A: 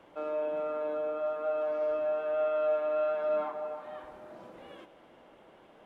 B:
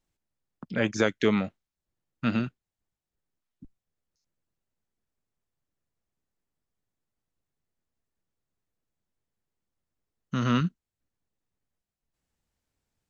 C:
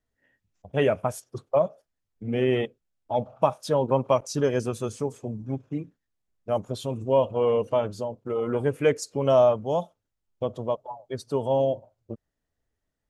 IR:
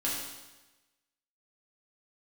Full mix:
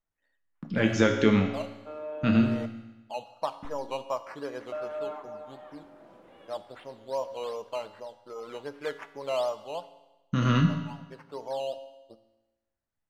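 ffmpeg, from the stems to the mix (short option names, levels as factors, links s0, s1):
-filter_complex "[0:a]adelay=1700,volume=0.562,asplit=3[s0][s1][s2];[s0]atrim=end=2.66,asetpts=PTS-STARTPTS,afade=t=out:st=2.656:d=0.004:c=hsin[s3];[s1]atrim=start=2.66:end=4.72,asetpts=PTS-STARTPTS,volume=0[s4];[s2]atrim=start=4.72,asetpts=PTS-STARTPTS,afade=t=in:d=0.004:c=hsin[s5];[s3][s4][s5]concat=n=3:v=0:a=1[s6];[1:a]agate=range=0.178:threshold=0.00251:ratio=16:detection=peak,lowshelf=f=160:g=9.5,volume=0.596,asplit=3[s7][s8][s9];[s8]volume=0.562[s10];[2:a]acrusher=samples=10:mix=1:aa=0.000001:lfo=1:lforange=6:lforate=2.6,bandpass=f=1200:t=q:w=0.85:csg=0,volume=0.422,asplit=2[s11][s12];[s12]volume=0.158[s13];[s9]apad=whole_len=577594[s14];[s11][s14]sidechaincompress=threshold=0.0141:ratio=8:attack=16:release=275[s15];[3:a]atrim=start_sample=2205[s16];[s10][s13]amix=inputs=2:normalize=0[s17];[s17][s16]afir=irnorm=-1:irlink=0[s18];[s6][s7][s15][s18]amix=inputs=4:normalize=0"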